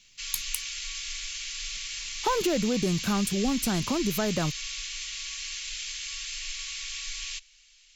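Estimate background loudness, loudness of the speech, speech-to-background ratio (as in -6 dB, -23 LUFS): -33.5 LUFS, -29.0 LUFS, 4.5 dB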